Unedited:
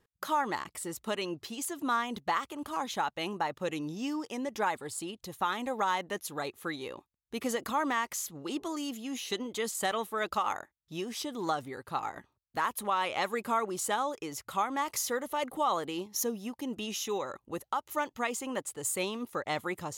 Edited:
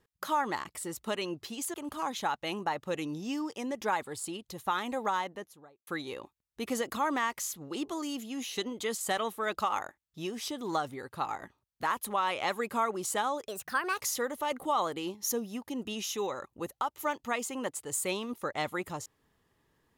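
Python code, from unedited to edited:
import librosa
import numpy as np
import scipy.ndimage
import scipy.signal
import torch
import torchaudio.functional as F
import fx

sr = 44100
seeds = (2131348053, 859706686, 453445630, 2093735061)

y = fx.studio_fade_out(x, sr, start_s=5.72, length_s=0.89)
y = fx.edit(y, sr, fx.cut(start_s=1.74, length_s=0.74),
    fx.speed_span(start_s=14.22, length_s=0.69, speed=1.34), tone=tone)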